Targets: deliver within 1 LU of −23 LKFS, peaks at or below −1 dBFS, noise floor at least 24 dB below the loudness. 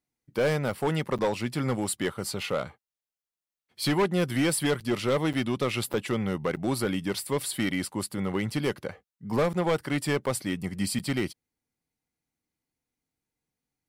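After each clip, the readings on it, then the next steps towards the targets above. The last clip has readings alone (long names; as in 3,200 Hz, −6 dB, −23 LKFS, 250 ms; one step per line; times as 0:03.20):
share of clipped samples 1.7%; peaks flattened at −19.5 dBFS; number of dropouts 8; longest dropout 7.6 ms; integrated loudness −28.5 LKFS; sample peak −19.5 dBFS; target loudness −23.0 LKFS
→ clipped peaks rebuilt −19.5 dBFS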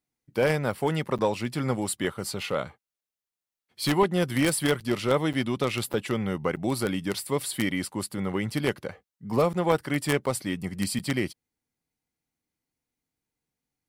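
share of clipped samples 0.0%; number of dropouts 8; longest dropout 7.6 ms
→ repair the gap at 0:01.18/0:04.80/0:05.33/0:05.93/0:06.56/0:09.53/0:10.26/0:10.99, 7.6 ms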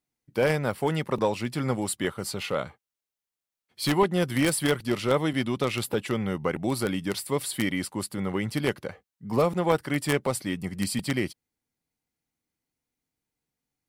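number of dropouts 0; integrated loudness −27.5 LKFS; sample peak −10.5 dBFS; target loudness −23.0 LKFS
→ level +4.5 dB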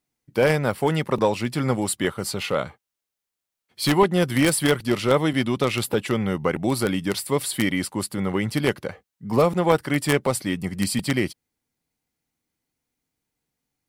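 integrated loudness −23.0 LKFS; sample peak −6.0 dBFS; background noise floor −85 dBFS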